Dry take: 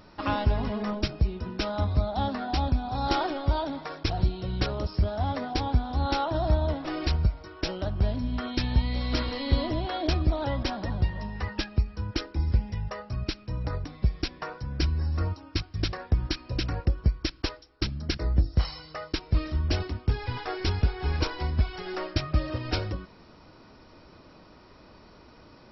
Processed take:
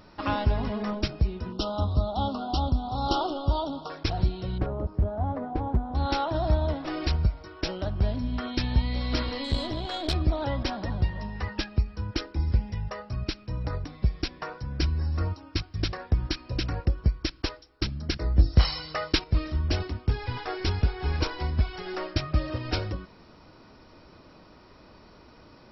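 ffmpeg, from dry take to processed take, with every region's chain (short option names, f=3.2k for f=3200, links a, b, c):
-filter_complex "[0:a]asettb=1/sr,asplit=3[a][b][c];[a]atrim=end=1.524[d];[b]atrim=start=1.52:end=3.9,asetpts=PTS-STARTPTS,afade=t=in:d=0.004:c=qsin,afade=t=out:st=2.376:d=0.004:c=qsin,asuperstop=centerf=2000:order=12:qfactor=1.3,equalizer=f=2.3k:t=o:w=0.32:g=15[e];[c]atrim=start=3.896[f];[d][e]acrossfade=d=0.004:c1=hsin:c2=qsin[g];[g][f]acrossfade=d=0.004:c1=qsin:c2=hsin,asettb=1/sr,asplit=3[h][i][j];[h]atrim=end=4.584[k];[i]atrim=start=4.58:end=5.95,asetpts=PTS-STARTPTS,afade=t=in:d=0.004:c=qsin,afade=t=out:st=1.366:d=0.004:c=qsin,lowpass=1k,aeval=exprs='0.168*(abs(mod(val(0)/0.168+3,4)-2)-1)':c=same[l];[j]atrim=start=5.946[m];[k][l]acrossfade=d=0.004:c1=hsin:c2=qsin[n];[n][m]acrossfade=d=0.004:c1=qsin:c2=hsin,asettb=1/sr,asplit=3[o][p][q];[o]atrim=end=9.444[r];[p]atrim=start=9.44:end=10.14,asetpts=PTS-STARTPTS,afade=t=in:d=0.004:c=qsin,afade=t=out:st=0.696:d=0.004:c=qsin,equalizer=f=3.8k:w=2.4:g=8.5,bandreject=f=2.7k:w=22,aeval=exprs='(tanh(7.94*val(0)+0.6)-tanh(0.6))/7.94':c=same[s];[q]atrim=start=10.136[t];[r][s]acrossfade=d=0.004:c1=hsin:c2=qsin[u];[u][t]acrossfade=d=0.004:c1=qsin:c2=hsin,asettb=1/sr,asplit=3[v][w][x];[v]atrim=end=18.394[y];[w]atrim=start=18.39:end=19.24,asetpts=PTS-STARTPTS,afade=t=in:d=0.004:c=qsin,afade=t=out:st=0.846:d=0.004:c=qsin,lowpass=3.9k,aemphasis=mode=production:type=75fm,acontrast=57[z];[x]atrim=start=19.236[aa];[y][z]acrossfade=d=0.004:c1=hsin:c2=qsin[ab];[ab][aa]acrossfade=d=0.004:c1=qsin:c2=hsin"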